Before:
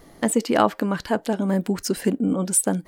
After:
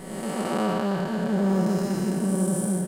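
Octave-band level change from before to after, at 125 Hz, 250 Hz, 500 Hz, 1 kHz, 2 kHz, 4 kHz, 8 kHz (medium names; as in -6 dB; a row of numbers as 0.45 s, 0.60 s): +2.0 dB, -1.0 dB, -3.5 dB, -5.0 dB, -4.5 dB, -5.0 dB, -10.0 dB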